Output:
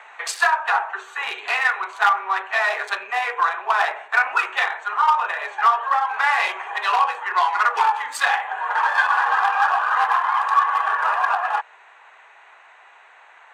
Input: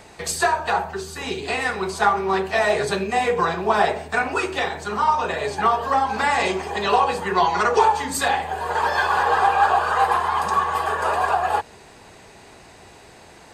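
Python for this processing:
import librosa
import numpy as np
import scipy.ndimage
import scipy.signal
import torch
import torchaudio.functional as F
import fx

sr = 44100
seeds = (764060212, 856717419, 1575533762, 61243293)

p1 = fx.wiener(x, sr, points=9)
p2 = fx.lowpass(p1, sr, hz=3000.0, slope=6)
p3 = fx.rider(p2, sr, range_db=10, speed_s=0.5)
p4 = p2 + F.gain(torch.from_numpy(p3), 0.5).numpy()
p5 = np.clip(p4, -10.0 ** (-4.5 / 20.0), 10.0 ** (-4.5 / 20.0))
p6 = fx.ladder_highpass(p5, sr, hz=870.0, resonance_pct=20)
y = F.gain(torch.from_numpy(p6), 4.0).numpy()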